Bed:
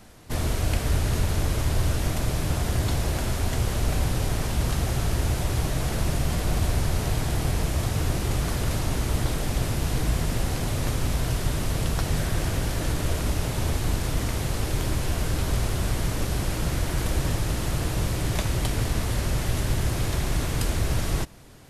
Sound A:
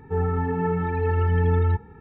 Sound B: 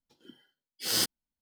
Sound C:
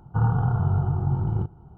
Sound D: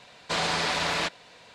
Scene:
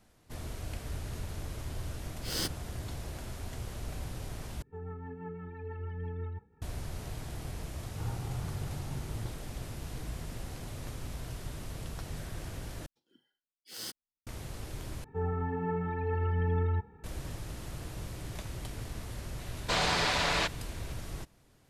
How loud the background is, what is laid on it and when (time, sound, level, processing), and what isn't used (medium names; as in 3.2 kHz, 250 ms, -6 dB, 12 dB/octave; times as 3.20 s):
bed -15 dB
1.42 s: add B -4 dB + tilt EQ -1.5 dB/octave
4.62 s: replace with A -16.5 dB + rotary cabinet horn 6 Hz
7.84 s: add C -17 dB
12.86 s: replace with B -14 dB
15.04 s: replace with A -9 dB + peaking EQ 690 Hz +7.5 dB 0.24 oct
19.39 s: add D -2 dB